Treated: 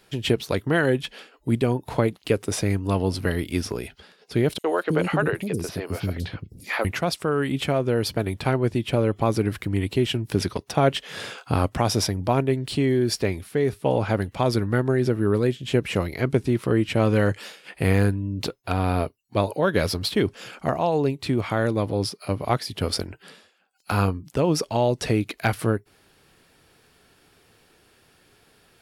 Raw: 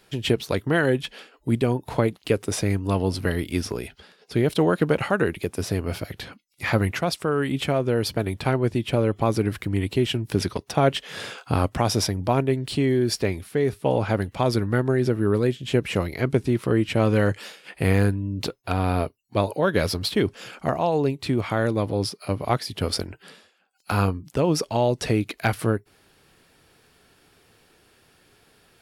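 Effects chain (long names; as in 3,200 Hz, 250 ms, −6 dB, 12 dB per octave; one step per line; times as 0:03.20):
0:04.58–0:06.85: three-band delay without the direct sound highs, mids, lows 60/320 ms, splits 340/4,900 Hz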